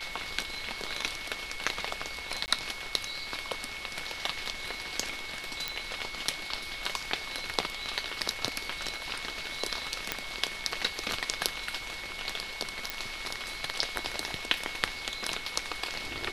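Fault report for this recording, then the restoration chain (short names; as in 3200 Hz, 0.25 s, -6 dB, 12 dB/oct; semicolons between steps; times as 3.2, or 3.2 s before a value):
tone 2200 Hz -41 dBFS
2.46–2.48 gap 19 ms
5.68 pop -14 dBFS
10.12 pop -10 dBFS
12.9 pop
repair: de-click; notch 2200 Hz, Q 30; interpolate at 2.46, 19 ms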